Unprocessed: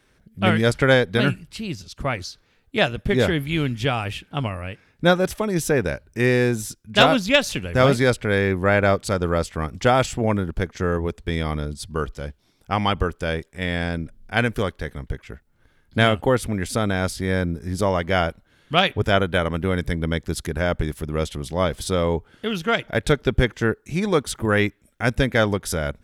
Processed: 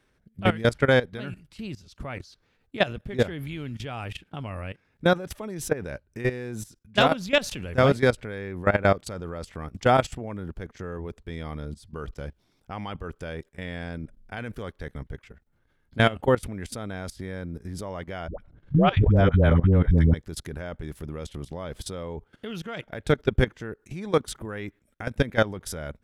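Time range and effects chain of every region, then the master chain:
18.28–20.14 RIAA curve playback + dispersion highs, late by 0.108 s, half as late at 490 Hz
whole clip: high shelf 2500 Hz -4.5 dB; level quantiser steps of 17 dB

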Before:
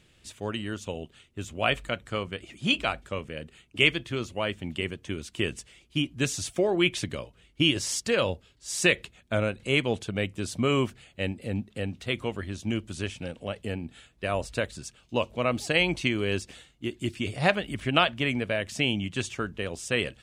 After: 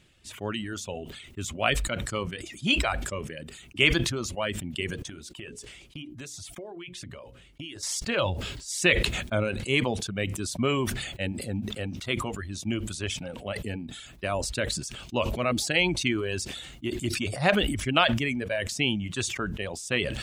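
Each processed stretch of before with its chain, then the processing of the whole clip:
5.02–7.83 notches 60/120/180/240/300/360/420/480/540 Hz + gate -51 dBFS, range -14 dB + compressor 12:1, threshold -36 dBFS
whole clip: reverb removal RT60 1.6 s; notch 470 Hz, Q 12; sustainer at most 42 dB/s

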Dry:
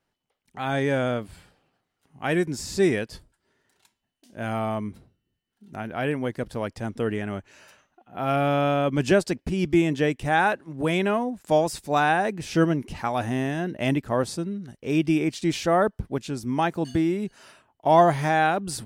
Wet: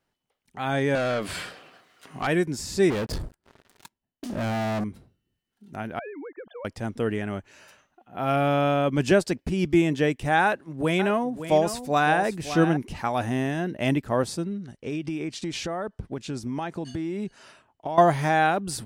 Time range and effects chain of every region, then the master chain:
0.95–2.27 notch 850 Hz, Q 6.2 + compressor 2.5:1, threshold -40 dBFS + overdrive pedal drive 29 dB, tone 4700 Hz, clips at -16.5 dBFS
2.9–4.84 tilt shelf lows +6 dB, about 1400 Hz + compressor 2:1, threshold -41 dBFS + sample leveller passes 5
5.99–6.65 sine-wave speech + compressor 12:1, threshold -35 dBFS
10.43–12.77 notch 880 Hz, Q 22 + echo 0.561 s -11 dB
14.45–17.98 LPF 8900 Hz + compressor 10:1, threshold -26 dBFS
whole clip: dry

